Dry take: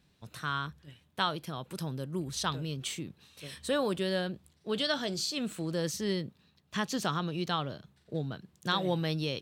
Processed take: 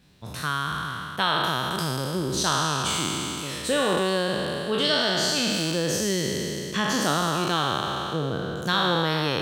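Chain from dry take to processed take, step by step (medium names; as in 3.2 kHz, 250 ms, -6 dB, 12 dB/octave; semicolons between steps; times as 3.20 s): spectral sustain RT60 2.67 s; compression 1.5:1, threshold -33 dBFS, peak gain reduction 4.5 dB; trim +7 dB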